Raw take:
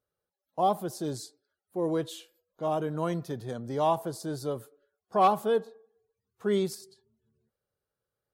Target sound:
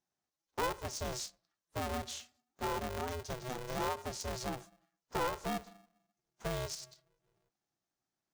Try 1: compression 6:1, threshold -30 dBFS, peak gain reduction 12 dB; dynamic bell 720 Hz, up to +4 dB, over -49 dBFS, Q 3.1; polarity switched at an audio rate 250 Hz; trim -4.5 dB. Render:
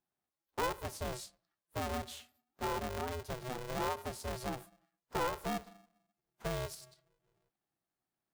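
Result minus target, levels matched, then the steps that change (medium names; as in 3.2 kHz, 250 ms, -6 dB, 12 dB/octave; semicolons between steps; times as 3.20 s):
8 kHz band -4.0 dB
add after compression: resonant low-pass 6.2 kHz, resonance Q 3.9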